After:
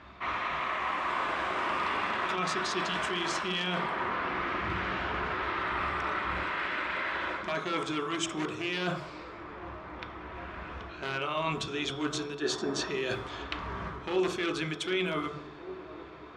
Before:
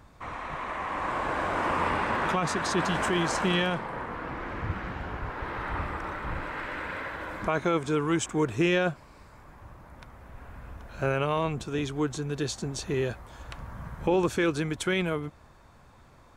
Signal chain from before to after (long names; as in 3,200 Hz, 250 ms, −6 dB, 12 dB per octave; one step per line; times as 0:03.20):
wavefolder on the positive side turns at −19.5 dBFS
notch filter 480 Hz, Q 12
low-pass that shuts in the quiet parts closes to 2,700 Hz, open at −27 dBFS
meter weighting curve D
gain on a spectral selection 0:12.42–0:12.88, 210–1,900 Hz +10 dB
high-shelf EQ 5,000 Hz −6 dB
mains-hum notches 50/100/150 Hz
reversed playback
downward compressor 6 to 1, threshold −35 dBFS, peak gain reduction 17 dB
reversed playback
delay with a band-pass on its return 756 ms, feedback 84%, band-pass 450 Hz, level −15 dB
on a send at −1.5 dB: convolution reverb RT60 0.55 s, pre-delay 3 ms
on the sum: level +3.5 dB